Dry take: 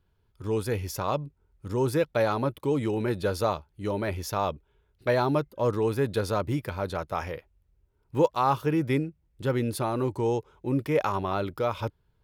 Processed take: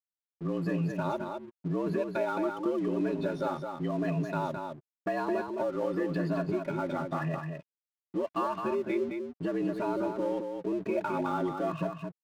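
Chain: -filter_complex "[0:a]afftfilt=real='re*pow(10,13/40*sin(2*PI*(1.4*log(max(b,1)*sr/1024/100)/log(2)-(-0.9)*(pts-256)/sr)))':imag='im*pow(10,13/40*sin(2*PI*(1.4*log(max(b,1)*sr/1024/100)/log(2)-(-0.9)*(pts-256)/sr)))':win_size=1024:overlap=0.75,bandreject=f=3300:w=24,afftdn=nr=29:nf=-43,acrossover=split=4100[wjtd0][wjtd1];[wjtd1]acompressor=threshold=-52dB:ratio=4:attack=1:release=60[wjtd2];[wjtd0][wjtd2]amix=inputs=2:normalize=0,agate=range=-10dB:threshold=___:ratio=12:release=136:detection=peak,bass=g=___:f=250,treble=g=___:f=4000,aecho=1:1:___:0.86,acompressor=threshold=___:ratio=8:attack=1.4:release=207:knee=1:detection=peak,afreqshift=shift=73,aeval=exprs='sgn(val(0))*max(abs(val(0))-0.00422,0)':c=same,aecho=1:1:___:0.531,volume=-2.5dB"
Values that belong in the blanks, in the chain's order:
-56dB, 8, -11, 3.7, -23dB, 214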